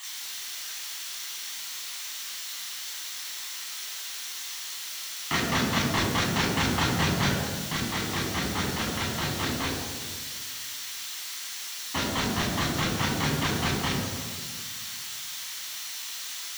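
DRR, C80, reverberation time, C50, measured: -3.0 dB, 4.0 dB, 1.8 s, 2.0 dB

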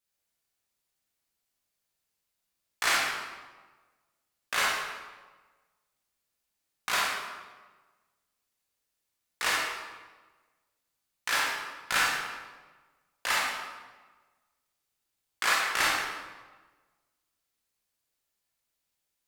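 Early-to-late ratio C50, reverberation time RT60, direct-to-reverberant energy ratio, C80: -1.0 dB, 1.3 s, -5.5 dB, 2.0 dB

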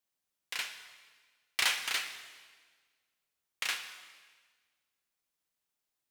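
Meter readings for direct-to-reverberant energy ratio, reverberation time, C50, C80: 6.5 dB, 1.5 s, 8.5 dB, 10.0 dB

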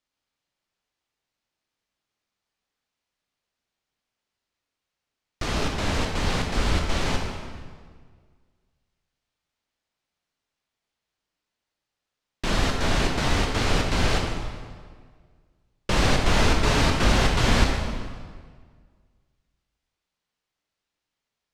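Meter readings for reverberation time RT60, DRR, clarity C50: 1.7 s, 0.5 dB, 3.0 dB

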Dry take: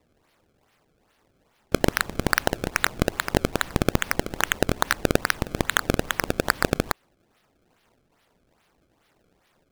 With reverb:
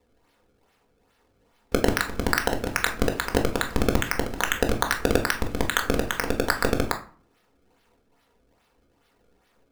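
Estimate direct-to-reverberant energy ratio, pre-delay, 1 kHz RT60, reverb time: 3.0 dB, 4 ms, 0.45 s, 0.40 s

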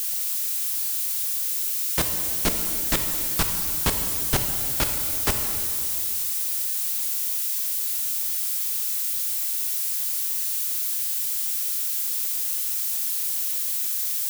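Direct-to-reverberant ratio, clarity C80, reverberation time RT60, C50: 4.5 dB, 6.5 dB, 2.6 s, 5.5 dB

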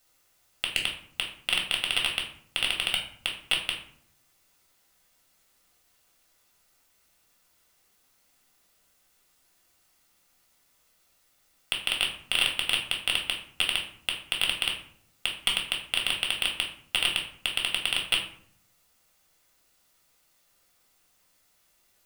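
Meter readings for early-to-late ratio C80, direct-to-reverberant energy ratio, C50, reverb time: 11.0 dB, 0.0 dB, 7.0 dB, 0.60 s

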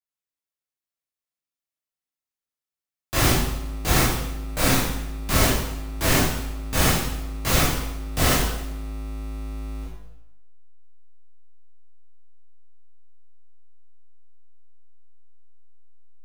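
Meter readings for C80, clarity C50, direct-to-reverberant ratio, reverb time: 3.5 dB, 0.0 dB, -10.0 dB, 0.90 s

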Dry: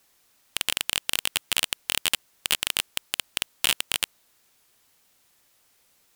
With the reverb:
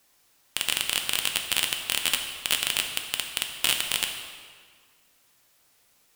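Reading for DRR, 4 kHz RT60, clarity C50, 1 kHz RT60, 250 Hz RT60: 3.0 dB, 1.4 s, 5.5 dB, 1.8 s, 1.8 s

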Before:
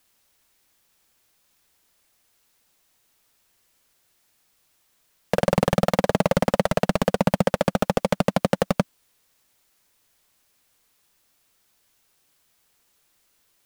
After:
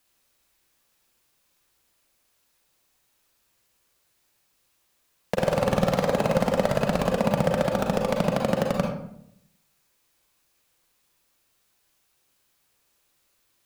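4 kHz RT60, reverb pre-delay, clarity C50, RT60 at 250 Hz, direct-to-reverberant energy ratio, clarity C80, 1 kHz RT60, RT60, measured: 0.45 s, 35 ms, 4.0 dB, 0.85 s, 1.0 dB, 7.5 dB, 0.65 s, 0.75 s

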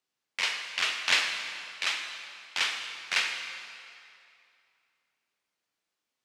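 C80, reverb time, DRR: 6.0 dB, 2.6 s, 4.0 dB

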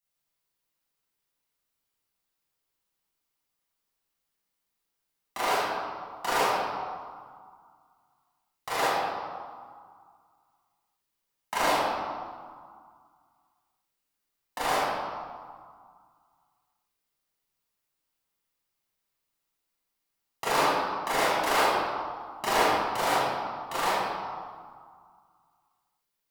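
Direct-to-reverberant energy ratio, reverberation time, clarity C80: -10.5 dB, 2.0 s, -1.0 dB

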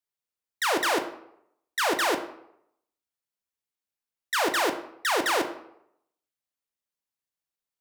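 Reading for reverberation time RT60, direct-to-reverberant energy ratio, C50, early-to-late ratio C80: 0.75 s, 6.0 dB, 10.5 dB, 13.5 dB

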